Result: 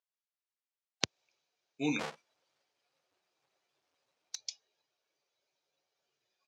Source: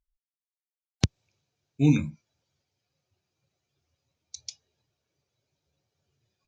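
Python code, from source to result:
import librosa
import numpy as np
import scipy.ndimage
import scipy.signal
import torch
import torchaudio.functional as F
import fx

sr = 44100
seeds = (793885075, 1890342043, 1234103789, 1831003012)

y = fx.halfwave_hold(x, sr, at=(1.99, 4.35), fade=0.02)
y = fx.bandpass_edges(y, sr, low_hz=530.0, high_hz=6300.0)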